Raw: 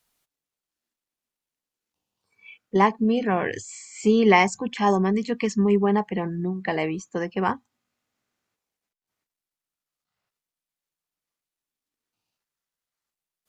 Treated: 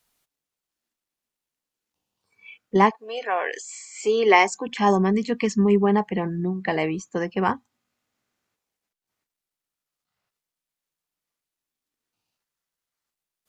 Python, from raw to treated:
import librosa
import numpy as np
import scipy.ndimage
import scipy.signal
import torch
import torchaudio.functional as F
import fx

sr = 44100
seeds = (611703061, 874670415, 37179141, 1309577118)

y = fx.highpass(x, sr, hz=fx.line((2.89, 640.0), (4.67, 270.0)), slope=24, at=(2.89, 4.67), fade=0.02)
y = F.gain(torch.from_numpy(y), 1.5).numpy()